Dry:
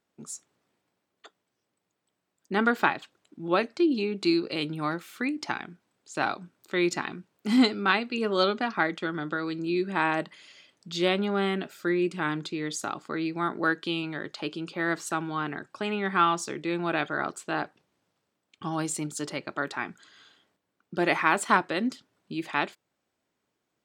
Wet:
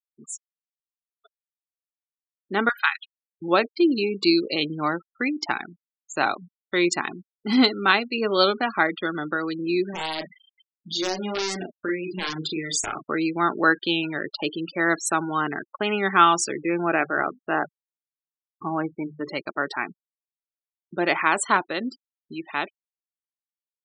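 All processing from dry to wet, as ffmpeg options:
ffmpeg -i in.wav -filter_complex "[0:a]asettb=1/sr,asplit=3[link_01][link_02][link_03];[link_01]atrim=end=2.694[link_04];[link_02]atrim=start=2.69:end=3.42,asetpts=PTS-STARTPTS,afade=type=in:duration=0.004:curve=qsin,afade=type=out:start_time=0.726:duration=0.004:curve=qsin,highpass=frequency=1200:width=0.5412,highpass=frequency=1200:width=1.3066,highshelf=frequency=3000:gain=4.5[link_05];[link_03]atrim=start=3.416[link_06];[link_04][link_05]acrossfade=duration=0.004:curve1=hsin:curve2=qsin[link_07];[link_07][link_06]acrossfade=duration=0.004:curve1=qsin:curve2=hsin,asettb=1/sr,asplit=3[link_08][link_09][link_10];[link_08]atrim=end=9.904[link_11];[link_09]atrim=start=9.9:end=13.04,asetpts=PTS-STARTPTS,afade=type=in:duration=0.004:curve=qsin,afade=type=out:start_time=3.136:duration=0.004:curve=qsin,acompressor=threshold=-32dB:ratio=2.5:attack=3.2:release=140:knee=1:detection=peak,aeval=exprs='(mod(15.8*val(0)+1,2)-1)/15.8':channel_layout=same,asplit=2[link_12][link_13];[link_13]adelay=38,volume=-4dB[link_14];[link_12][link_14]amix=inputs=2:normalize=0,atrim=end_sample=138474[link_15];[link_10]atrim=start=13.036[link_16];[link_11][link_15]acrossfade=duration=0.004:curve1=hsin:curve2=qsin[link_17];[link_17][link_16]acrossfade=duration=0.004:curve1=qsin:curve2=hsin,asettb=1/sr,asplit=3[link_18][link_19][link_20];[link_18]atrim=end=16.614[link_21];[link_19]atrim=start=16.61:end=19.29,asetpts=PTS-STARTPTS,afade=type=in:duration=0.004:curve=qsin,afade=type=out:start_time=2.676:duration=0.004:curve=qsin,lowpass=frequency=2500:width=0.5412,lowpass=frequency=2500:width=1.3066,bandreject=frequency=50:width_type=h:width=6,bandreject=frequency=100:width_type=h:width=6,bandreject=frequency=150:width_type=h:width=6,bandreject=frequency=200:width_type=h:width=6,bandreject=frequency=250:width_type=h:width=6,adynamicequalizer=threshold=0.00447:dfrequency=1000:dqfactor=3.9:tfrequency=1000:tqfactor=3.9:attack=5:release=100:ratio=0.375:range=3:mode=cutabove:tftype=bell[link_22];[link_20]atrim=start=19.286[link_23];[link_21][link_22]acrossfade=duration=0.004:curve1=hsin:curve2=qsin[link_24];[link_24][link_23]acrossfade=duration=0.004:curve1=qsin:curve2=hsin,afftfilt=real='re*gte(hypot(re,im),0.0178)':imag='im*gte(hypot(re,im),0.0178)':win_size=1024:overlap=0.75,bass=frequency=250:gain=-6,treble=frequency=4000:gain=5,dynaudnorm=framelen=190:gausssize=31:maxgain=8dB" out.wav

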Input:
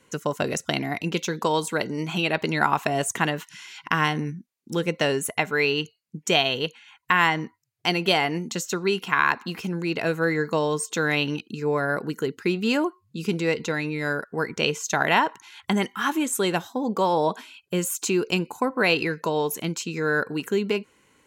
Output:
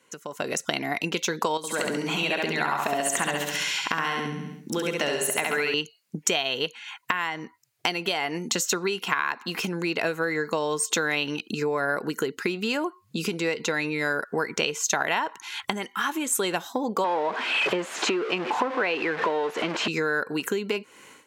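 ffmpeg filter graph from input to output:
ffmpeg -i in.wav -filter_complex "[0:a]asettb=1/sr,asplit=3[link_01][link_02][link_03];[link_01]atrim=end=1.574[link_04];[link_02]atrim=start=1.57:end=5.74,asetpts=PTS-STARTPTS,afade=type=in:duration=0.004:curve=qsin,afade=type=out:start_time=4.166:duration=0.004:curve=qsin,acompressor=threshold=-38dB:ratio=2:attack=3.2:release=140:knee=1:detection=peak,aecho=1:1:68|136|204|272|340|408|476:0.708|0.375|0.199|0.105|0.0559|0.0296|0.0157,atrim=end_sample=183897[link_05];[link_03]atrim=start=5.736[link_06];[link_04][link_05]acrossfade=duration=0.004:curve1=hsin:curve2=qsin[link_07];[link_07][link_06]acrossfade=duration=0.004:curve1=qsin:curve2=hsin,asettb=1/sr,asplit=3[link_08][link_09][link_10];[link_08]atrim=end=17.044[link_11];[link_09]atrim=start=17.04:end=19.88,asetpts=PTS-STARTPTS,afade=type=in:duration=0.004:curve=qsin,afade=type=out:start_time=2.836:duration=0.004:curve=qsin,aeval=exprs='val(0)+0.5*0.0668*sgn(val(0))':channel_layout=same,highpass=260,lowpass=2300[link_12];[link_10]atrim=start=19.876[link_13];[link_11][link_12]acrossfade=duration=0.004:curve1=hsin:curve2=qsin[link_14];[link_14][link_13]acrossfade=duration=0.004:curve1=qsin:curve2=hsin,acompressor=threshold=-34dB:ratio=16,highpass=frequency=410:poles=1,dynaudnorm=framelen=240:gausssize=3:maxgain=16dB,volume=-2dB" out.wav

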